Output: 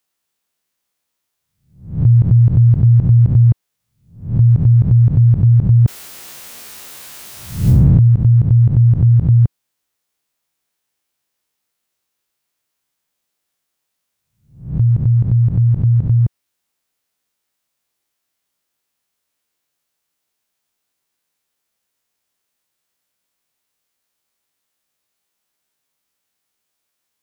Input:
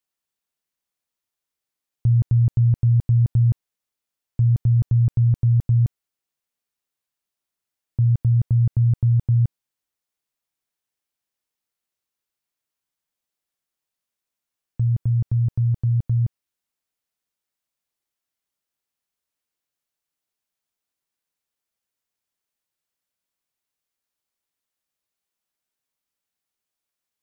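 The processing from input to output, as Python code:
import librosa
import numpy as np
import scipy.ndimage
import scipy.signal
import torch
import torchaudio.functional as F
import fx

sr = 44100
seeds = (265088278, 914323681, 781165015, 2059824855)

y = fx.spec_swells(x, sr, rise_s=0.47)
y = fx.low_shelf(y, sr, hz=61.0, db=-5.5)
y = fx.env_flatten(y, sr, amount_pct=100, at=(5.85, 8.08))
y = F.gain(torch.from_numpy(y), 8.5).numpy()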